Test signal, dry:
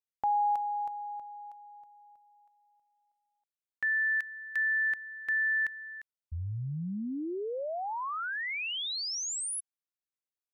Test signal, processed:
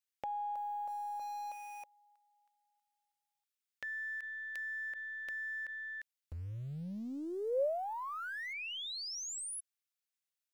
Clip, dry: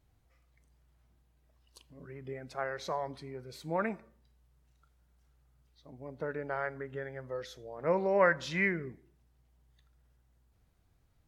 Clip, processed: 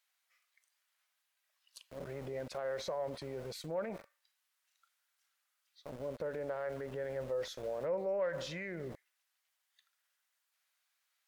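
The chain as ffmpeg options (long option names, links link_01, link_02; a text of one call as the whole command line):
ffmpeg -i in.wav -filter_complex "[0:a]acrossover=split=1300[link_01][link_02];[link_01]aeval=exprs='val(0)*gte(abs(val(0)),0.00282)':channel_layout=same[link_03];[link_03][link_02]amix=inputs=2:normalize=0,acompressor=threshold=-45dB:ratio=6:attack=1.9:release=24:knee=1:detection=rms,aeval=exprs='0.0188*(cos(1*acos(clip(val(0)/0.0188,-1,1)))-cos(1*PI/2))+0.000596*(cos(3*acos(clip(val(0)/0.0188,-1,1)))-cos(3*PI/2))+0.00015*(cos(8*acos(clip(val(0)/0.0188,-1,1)))-cos(8*PI/2))':channel_layout=same,equalizer=frequency=550:width_type=o:width=0.55:gain=12,volume=4dB" out.wav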